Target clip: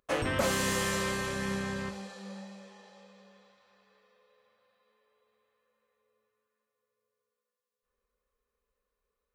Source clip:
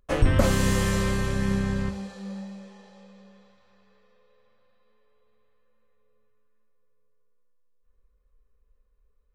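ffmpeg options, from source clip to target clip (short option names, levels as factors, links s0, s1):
-af "highpass=f=490:p=1,asoftclip=type=tanh:threshold=0.106"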